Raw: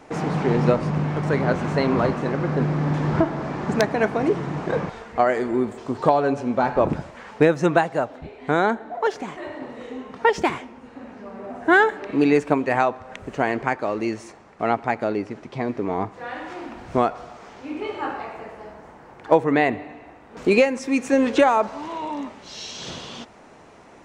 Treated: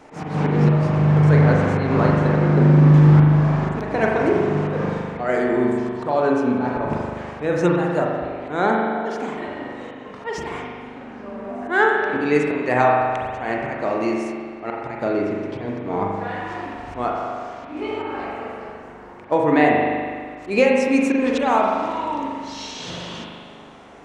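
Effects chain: slow attack 151 ms; spring tank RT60 1.9 s, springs 40 ms, chirp 75 ms, DRR -1.5 dB

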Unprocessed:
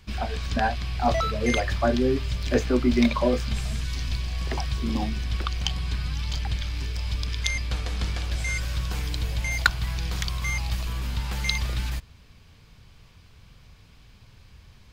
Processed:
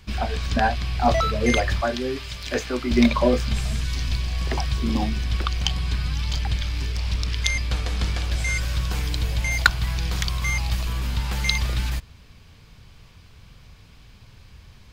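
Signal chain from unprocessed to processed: 1.81–2.91 s: bass shelf 490 Hz -12 dB; 6.92–7.35 s: loudspeaker Doppler distortion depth 0.47 ms; trim +3.5 dB

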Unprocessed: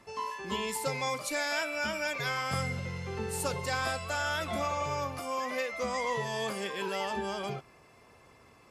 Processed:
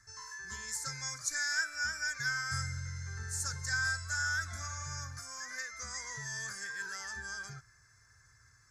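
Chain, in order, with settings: FFT filter 120 Hz 0 dB, 190 Hz -20 dB, 600 Hz -26 dB, 1.1 kHz -15 dB, 1.6 kHz +6 dB, 2.8 kHz -26 dB, 4.1 kHz -7 dB, 6.3 kHz +9 dB, 9.1 kHz -4 dB, 13 kHz -10 dB

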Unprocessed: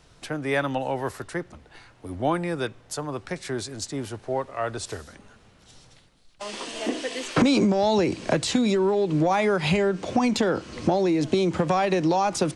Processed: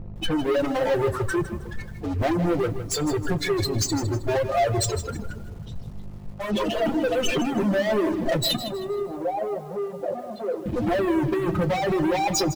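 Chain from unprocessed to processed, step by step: spectral contrast enhancement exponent 3.8; compression 16:1, threshold -26 dBFS, peak gain reduction 11 dB; hum 50 Hz, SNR 18 dB; waveshaping leveller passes 5; 8.56–10.66 s: band-pass filter 610 Hz, Q 2.2; reverberation RT60 1.6 s, pre-delay 6 ms, DRR 3.5 dB; reverb removal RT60 0.55 s; speakerphone echo 140 ms, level -27 dB; bit-crushed delay 158 ms, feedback 35%, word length 7-bit, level -11.5 dB; trim -4 dB

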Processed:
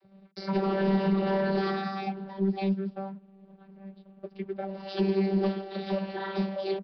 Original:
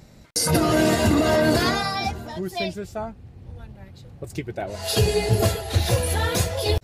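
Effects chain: vocoder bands 32, saw 194 Hz; waveshaping leveller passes 1; resampled via 11.025 kHz; trim -8 dB

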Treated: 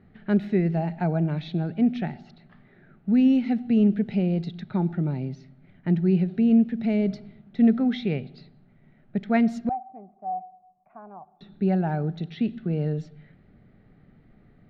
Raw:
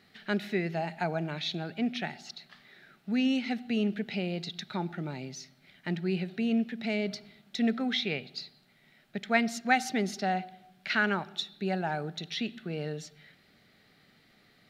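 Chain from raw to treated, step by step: 9.69–11.41 s: cascade formant filter a; tilt EQ -4.5 dB/octave; level-controlled noise filter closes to 2.2 kHz, open at -19 dBFS

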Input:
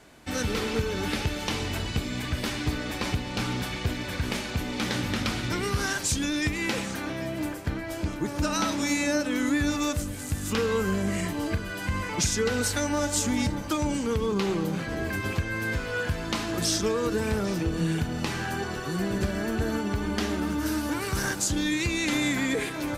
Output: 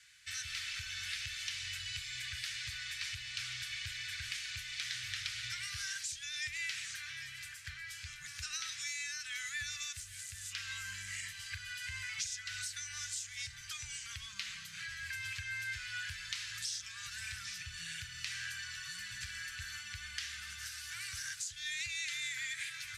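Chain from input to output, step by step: elliptic band-stop 110–1700 Hz, stop band 50 dB; RIAA curve recording; compression 3:1, threshold -29 dBFS, peak gain reduction 12 dB; distance through air 87 m; trim -5 dB

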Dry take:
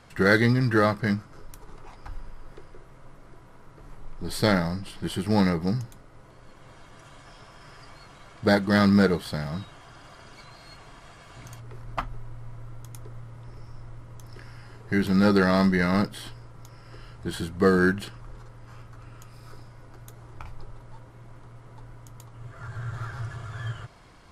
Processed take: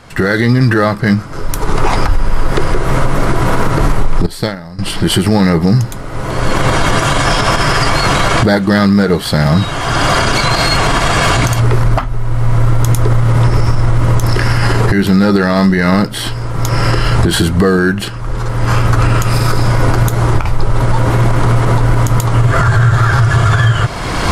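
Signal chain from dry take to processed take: recorder AGC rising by 27 dB/s; 4.26–4.79 s: gate -16 dBFS, range -18 dB; loudness maximiser +14 dB; trim -1 dB

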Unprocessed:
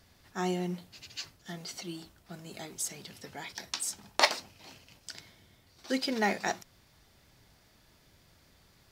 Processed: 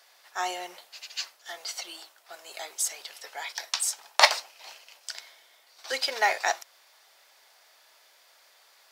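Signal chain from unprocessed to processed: high-pass 590 Hz 24 dB/octave; trim +6.5 dB

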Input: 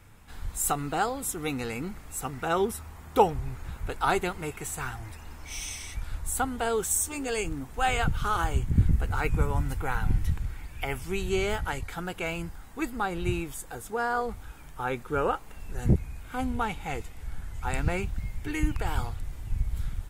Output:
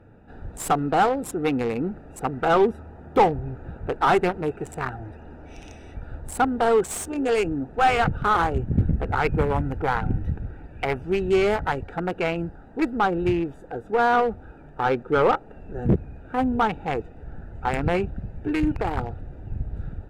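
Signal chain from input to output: local Wiener filter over 41 samples; overdrive pedal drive 25 dB, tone 1.1 kHz, clips at -6.5 dBFS

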